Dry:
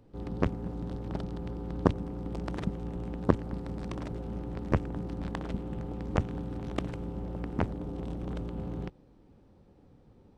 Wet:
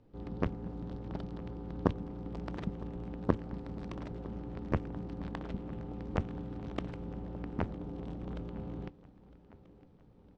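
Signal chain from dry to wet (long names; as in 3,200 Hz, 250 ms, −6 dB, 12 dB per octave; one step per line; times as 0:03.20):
low-pass filter 5,300 Hz 12 dB per octave
repeating echo 957 ms, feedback 56%, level −20 dB
on a send at −21.5 dB: convolution reverb, pre-delay 4 ms
on the sum: level −4.5 dB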